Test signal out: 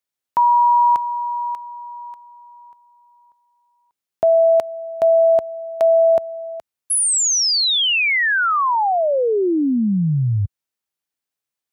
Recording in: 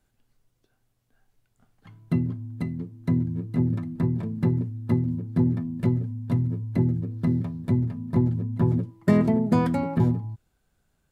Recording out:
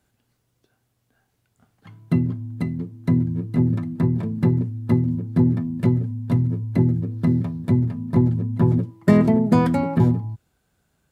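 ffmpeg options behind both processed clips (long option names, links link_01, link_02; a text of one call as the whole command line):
ffmpeg -i in.wav -af "highpass=63,volume=4.5dB" out.wav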